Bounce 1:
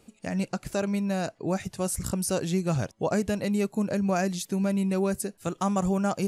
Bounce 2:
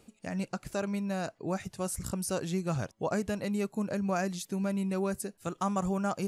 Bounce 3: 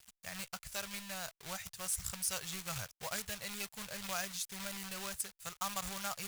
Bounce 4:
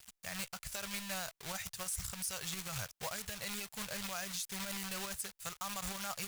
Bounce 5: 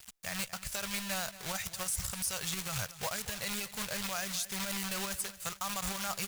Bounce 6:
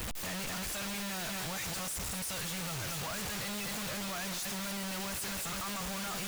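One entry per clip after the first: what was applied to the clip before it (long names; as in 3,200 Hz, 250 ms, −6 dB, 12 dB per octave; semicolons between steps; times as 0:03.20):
dynamic equaliser 1,200 Hz, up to +4 dB, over −42 dBFS, Q 1.4; reversed playback; upward compression, threshold −34 dBFS; reversed playback; level −5.5 dB
log-companded quantiser 4 bits; guitar amp tone stack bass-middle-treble 10-0-10; level +1.5 dB
brickwall limiter −31 dBFS, peak gain reduction 11 dB; level +4 dB
repeating echo 230 ms, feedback 41%, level −16 dB; level +4.5 dB
sign of each sample alone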